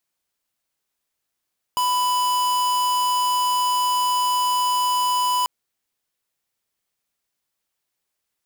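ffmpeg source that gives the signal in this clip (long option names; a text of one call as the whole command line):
ffmpeg -f lavfi -i "aevalsrc='0.0944*(2*lt(mod(994*t,1),0.5)-1)':duration=3.69:sample_rate=44100" out.wav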